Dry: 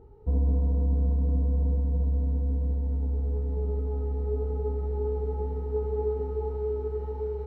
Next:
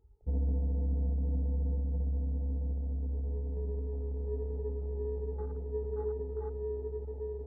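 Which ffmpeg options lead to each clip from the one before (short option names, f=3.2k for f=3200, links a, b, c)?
-af "afwtdn=0.0158,volume=-6.5dB"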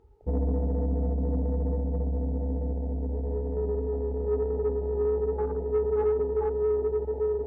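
-filter_complex "[0:a]asplit=2[a][b];[b]highpass=f=720:p=1,volume=19dB,asoftclip=type=tanh:threshold=-21.5dB[c];[a][c]amix=inputs=2:normalize=0,lowpass=f=1k:p=1,volume=-6dB,volume=6.5dB"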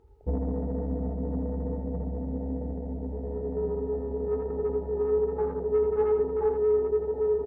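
-af "aecho=1:1:80:0.501"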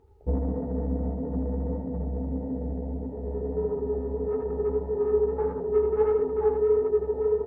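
-af "flanger=delay=6.9:depth=9.7:regen=-36:speed=1.6:shape=triangular,volume=5dB"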